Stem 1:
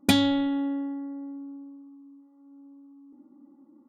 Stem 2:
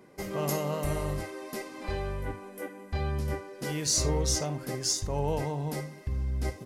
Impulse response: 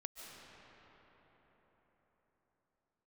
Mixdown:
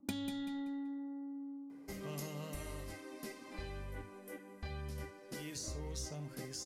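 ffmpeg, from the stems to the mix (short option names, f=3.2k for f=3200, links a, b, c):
-filter_complex "[0:a]lowshelf=f=340:g=8,volume=-6dB,asplit=2[a][b];[b]volume=-9.5dB[c];[1:a]adelay=1700,volume=-3dB[d];[c]aecho=0:1:191|382|573|764:1|0.25|0.0625|0.0156[e];[a][d][e]amix=inputs=3:normalize=0,acrossover=split=360|1600|7000[f][g][h][i];[f]acompressor=threshold=-38dB:ratio=4[j];[g]acompressor=threshold=-49dB:ratio=4[k];[h]acompressor=threshold=-45dB:ratio=4[l];[i]acompressor=threshold=-47dB:ratio=4[m];[j][k][l][m]amix=inputs=4:normalize=0,flanger=delay=3.1:depth=1.8:regen=-76:speed=0.73:shape=triangular"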